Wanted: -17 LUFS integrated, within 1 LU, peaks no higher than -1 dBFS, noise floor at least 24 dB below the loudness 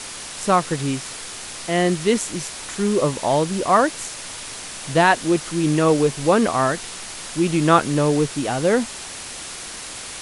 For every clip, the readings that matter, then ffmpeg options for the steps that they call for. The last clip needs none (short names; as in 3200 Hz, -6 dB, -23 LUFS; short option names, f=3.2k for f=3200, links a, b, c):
noise floor -34 dBFS; noise floor target -45 dBFS; loudness -20.5 LUFS; peak -2.5 dBFS; loudness target -17.0 LUFS
-> -af "afftdn=nr=11:nf=-34"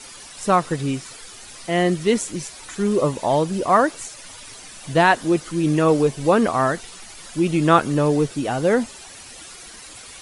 noise floor -41 dBFS; noise floor target -44 dBFS
-> -af "afftdn=nr=6:nf=-41"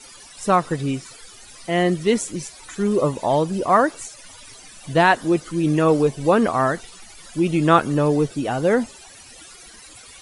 noise floor -44 dBFS; loudness -20.0 LUFS; peak -2.5 dBFS; loudness target -17.0 LUFS
-> -af "volume=3dB,alimiter=limit=-1dB:level=0:latency=1"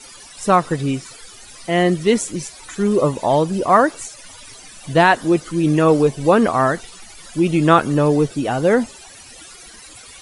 loudness -17.0 LUFS; peak -1.0 dBFS; noise floor -41 dBFS